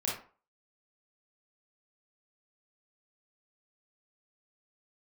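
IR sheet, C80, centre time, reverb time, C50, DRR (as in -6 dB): 9.5 dB, 42 ms, 0.40 s, 2.5 dB, -5.0 dB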